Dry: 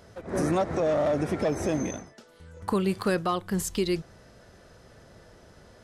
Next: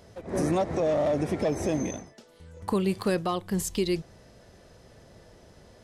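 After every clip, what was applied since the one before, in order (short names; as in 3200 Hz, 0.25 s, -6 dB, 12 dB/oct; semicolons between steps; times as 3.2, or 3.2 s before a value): bell 1400 Hz -6.5 dB 0.56 oct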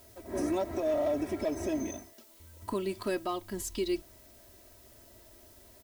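comb 3.1 ms, depth 87%; added noise blue -51 dBFS; gain -8 dB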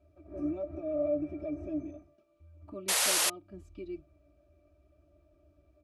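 octave resonator D, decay 0.1 s; painted sound noise, 2.88–3.3, 430–12000 Hz -29 dBFS; gain +1.5 dB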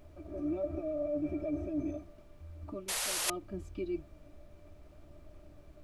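reverse; compressor 16:1, threshold -38 dBFS, peak gain reduction 14.5 dB; reverse; added noise brown -62 dBFS; gain +7 dB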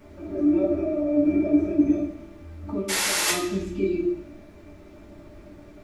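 reverb RT60 0.65 s, pre-delay 3 ms, DRR -12.5 dB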